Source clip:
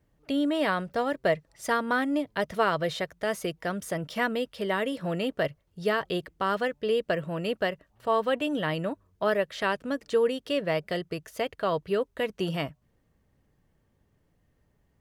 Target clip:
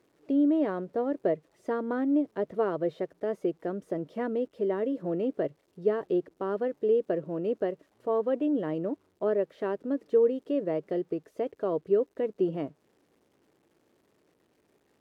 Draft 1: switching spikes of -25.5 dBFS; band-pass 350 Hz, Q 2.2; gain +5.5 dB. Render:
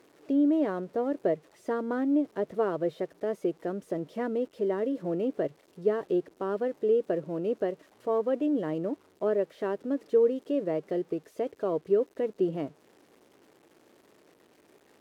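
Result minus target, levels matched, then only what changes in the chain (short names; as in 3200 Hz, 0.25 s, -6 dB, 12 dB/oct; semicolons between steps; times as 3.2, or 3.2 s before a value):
switching spikes: distortion +9 dB
change: switching spikes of -35 dBFS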